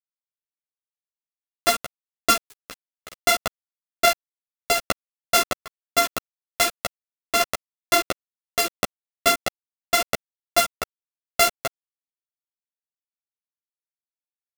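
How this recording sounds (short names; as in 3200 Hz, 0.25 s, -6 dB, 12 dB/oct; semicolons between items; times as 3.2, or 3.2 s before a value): a buzz of ramps at a fixed pitch in blocks of 64 samples; tremolo saw down 2.3 Hz, depth 40%; a quantiser's noise floor 6-bit, dither none; a shimmering, thickened sound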